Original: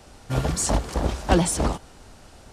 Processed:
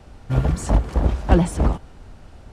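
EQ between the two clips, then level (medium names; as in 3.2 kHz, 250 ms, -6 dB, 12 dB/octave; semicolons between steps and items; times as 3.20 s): bass shelf 200 Hz +9 dB; dynamic bell 4.4 kHz, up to -4 dB, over -40 dBFS, Q 1.1; tone controls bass 0 dB, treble -9 dB; -1.0 dB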